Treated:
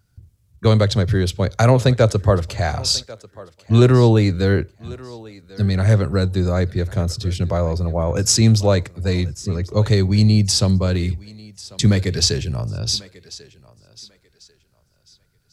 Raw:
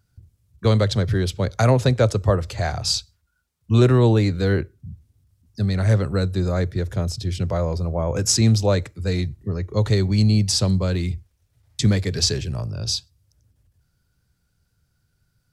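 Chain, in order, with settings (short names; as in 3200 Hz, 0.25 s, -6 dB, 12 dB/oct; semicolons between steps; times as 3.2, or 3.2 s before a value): thinning echo 1.093 s, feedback 25%, high-pass 330 Hz, level -18.5 dB; gain +3 dB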